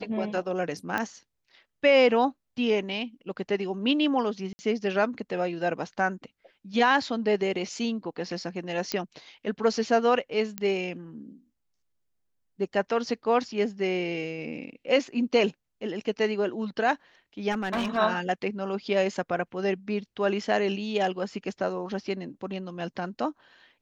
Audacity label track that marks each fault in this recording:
0.980000	0.980000	pop -14 dBFS
4.530000	4.590000	dropout 60 ms
8.920000	8.920000	pop -13 dBFS
10.580000	10.580000	pop -15 dBFS
17.510000	17.980000	clipped -24 dBFS

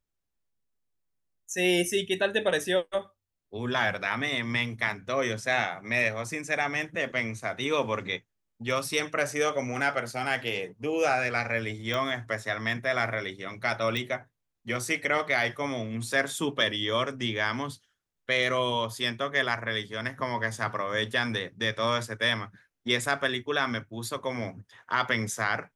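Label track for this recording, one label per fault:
11.940000	11.940000	pop -17 dBFS
13.970000	13.970000	pop

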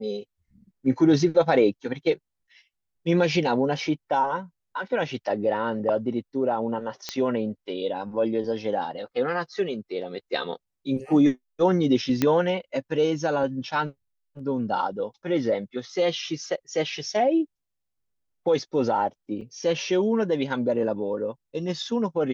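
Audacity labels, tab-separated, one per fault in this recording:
7.090000	7.090000	pop -13 dBFS
12.220000	12.220000	pop -8 dBFS
19.410000	19.410000	dropout 4.5 ms

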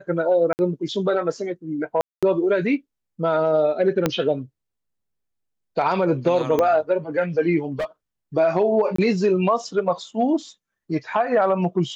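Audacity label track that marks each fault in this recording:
0.530000	0.590000	dropout 59 ms
2.010000	2.230000	dropout 216 ms
4.060000	4.060000	pop -5 dBFS
6.590000	6.590000	pop -9 dBFS
7.720000	7.850000	clipped -22 dBFS
8.960000	8.980000	dropout 24 ms

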